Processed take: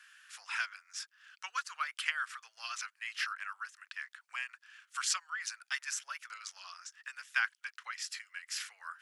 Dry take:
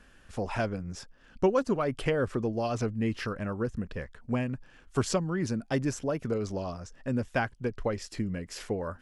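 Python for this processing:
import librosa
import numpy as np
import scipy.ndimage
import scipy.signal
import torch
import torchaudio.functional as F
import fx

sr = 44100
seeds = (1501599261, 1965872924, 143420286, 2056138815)

y = scipy.signal.sosfilt(scipy.signal.butter(6, 1300.0, 'highpass', fs=sr, output='sos'), x)
y = F.gain(torch.from_numpy(y), 3.5).numpy()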